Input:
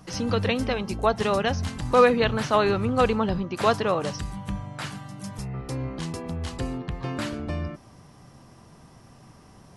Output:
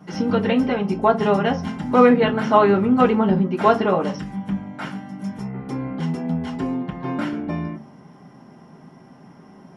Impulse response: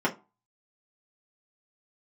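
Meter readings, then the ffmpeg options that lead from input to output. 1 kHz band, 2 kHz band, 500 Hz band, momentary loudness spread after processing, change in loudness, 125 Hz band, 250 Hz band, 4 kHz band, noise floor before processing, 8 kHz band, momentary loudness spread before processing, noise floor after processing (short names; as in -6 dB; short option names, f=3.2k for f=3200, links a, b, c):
+5.0 dB, +2.0 dB, +4.5 dB, 15 LU, +5.5 dB, +2.5 dB, +9.0 dB, -2.0 dB, -51 dBFS, n/a, 13 LU, -47 dBFS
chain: -filter_complex "[0:a]bandreject=f=73.8:t=h:w=4,bandreject=f=147.6:t=h:w=4,bandreject=f=221.4:t=h:w=4[a];[1:a]atrim=start_sample=2205[b];[a][b]afir=irnorm=-1:irlink=0,volume=-8.5dB"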